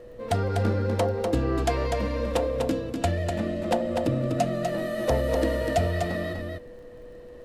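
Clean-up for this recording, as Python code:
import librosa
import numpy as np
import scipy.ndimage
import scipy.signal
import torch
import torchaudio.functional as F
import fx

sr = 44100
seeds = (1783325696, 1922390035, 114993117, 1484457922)

y = fx.fix_declick_ar(x, sr, threshold=6.5)
y = fx.notch(y, sr, hz=490.0, q=30.0)
y = fx.noise_reduce(y, sr, print_start_s=6.89, print_end_s=7.39, reduce_db=29.0)
y = fx.fix_echo_inverse(y, sr, delay_ms=247, level_db=-5.0)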